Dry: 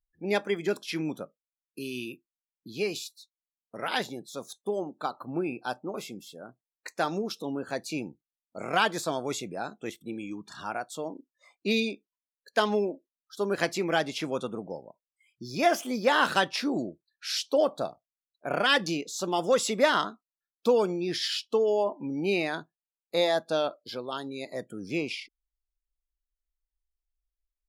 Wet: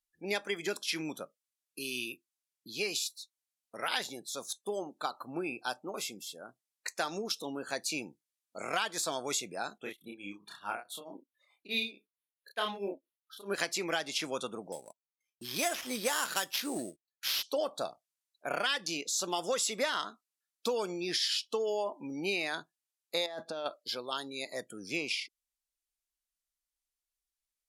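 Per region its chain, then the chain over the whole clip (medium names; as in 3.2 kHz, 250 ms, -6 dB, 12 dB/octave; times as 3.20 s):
9.78–13.54 s: tremolo triangle 4.6 Hz, depth 100% + high-order bell 6.3 kHz -14 dB 1 oct + doubling 30 ms -2.5 dB
14.72–17.43 s: gate -52 dBFS, range -23 dB + sample-rate reducer 8.5 kHz
23.26–23.66 s: low-pass 1.3 kHz 6 dB/octave + compressor with a negative ratio -34 dBFS
whole clip: low-pass 12 kHz 12 dB/octave; tilt EQ +3 dB/octave; compression 5:1, threshold -27 dBFS; trim -1.5 dB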